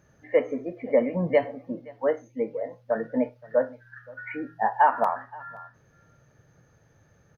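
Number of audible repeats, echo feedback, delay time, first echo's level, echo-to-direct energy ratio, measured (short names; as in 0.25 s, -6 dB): 1, no steady repeat, 0.523 s, -23.0 dB, -23.0 dB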